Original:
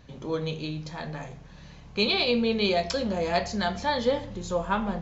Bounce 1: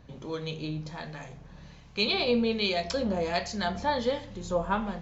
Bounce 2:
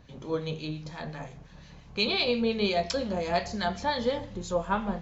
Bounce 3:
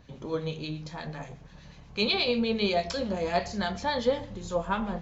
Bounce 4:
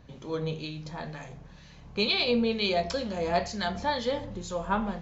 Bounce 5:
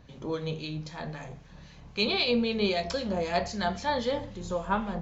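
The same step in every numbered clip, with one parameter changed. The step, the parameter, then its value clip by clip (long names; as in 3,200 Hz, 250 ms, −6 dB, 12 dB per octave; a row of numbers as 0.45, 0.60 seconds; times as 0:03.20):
two-band tremolo in antiphase, speed: 1.3, 5.7, 8.3, 2.1, 3.8 Hertz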